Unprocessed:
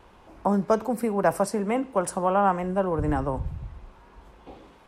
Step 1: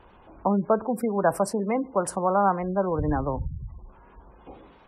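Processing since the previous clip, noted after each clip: spectral gate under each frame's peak -25 dB strong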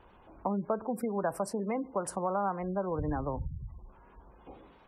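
compressor 2.5:1, threshold -24 dBFS, peak gain reduction 6 dB; gain -5 dB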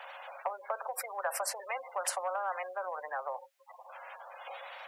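rippled Chebyshev high-pass 530 Hz, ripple 6 dB; spectral compressor 2:1; gain +4.5 dB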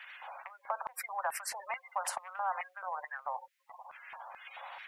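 LFO high-pass square 2.3 Hz 850–1900 Hz; gain -4 dB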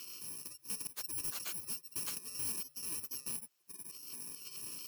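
FFT order left unsorted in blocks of 64 samples; soft clip -37.5 dBFS, distortion -7 dB; gain +2.5 dB

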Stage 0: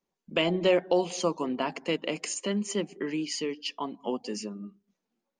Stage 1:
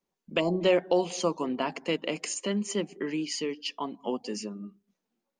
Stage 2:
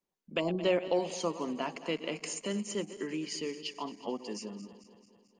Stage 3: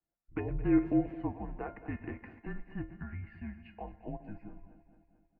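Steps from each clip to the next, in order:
spectral gain 0.4–0.61, 1200–4100 Hz -22 dB
regenerating reverse delay 0.11 s, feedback 75%, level -14 dB; gain -5 dB
resonator 180 Hz, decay 0.29 s, harmonics odd, mix 80%; mistuned SSB -220 Hz 190–2100 Hz; speakerphone echo 0.13 s, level -24 dB; gain +8 dB

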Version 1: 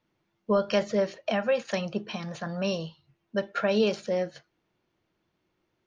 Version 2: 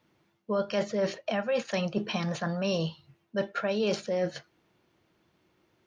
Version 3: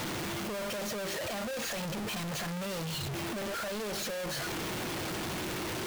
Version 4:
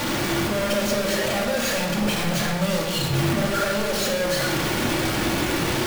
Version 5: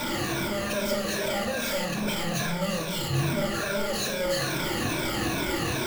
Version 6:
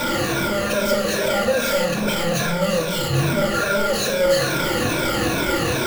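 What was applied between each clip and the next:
HPF 53 Hz; reverse; compressor 6:1, threshold -33 dBFS, peak gain reduction 13 dB; reverse; gain +7 dB
infinite clipping; gain -3.5 dB
reverb RT60 1.4 s, pre-delay 3 ms, DRR -1.5 dB; gain +8 dB
moving spectral ripple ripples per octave 1.6, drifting -2.4 Hz, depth 12 dB; gain -6.5 dB
small resonant body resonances 510/1400 Hz, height 9 dB, ringing for 45 ms; gain +6 dB

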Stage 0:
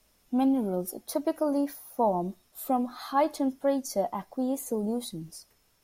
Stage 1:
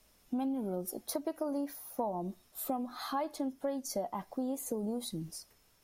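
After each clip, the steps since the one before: compressor 4:1, threshold -33 dBFS, peak gain reduction 11.5 dB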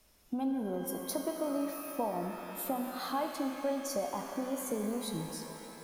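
shimmer reverb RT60 3.5 s, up +12 st, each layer -8 dB, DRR 4.5 dB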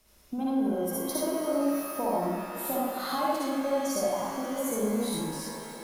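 reverb RT60 0.50 s, pre-delay 48 ms, DRR -4.5 dB

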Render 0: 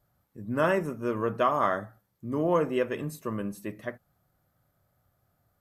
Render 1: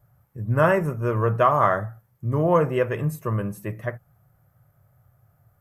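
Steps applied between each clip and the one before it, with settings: graphic EQ 125/250/4000/8000 Hz +11/-11/-11/-4 dB; gain +7.5 dB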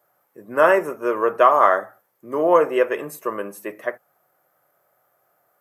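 HPF 310 Hz 24 dB/oct; gain +4.5 dB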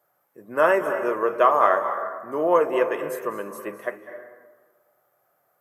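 reverb RT60 1.4 s, pre-delay 0.19 s, DRR 8.5 dB; gain -3.5 dB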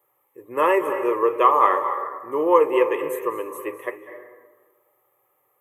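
fixed phaser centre 1000 Hz, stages 8; gain +4.5 dB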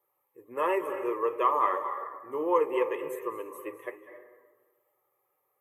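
bin magnitudes rounded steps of 15 dB; gain -8.5 dB

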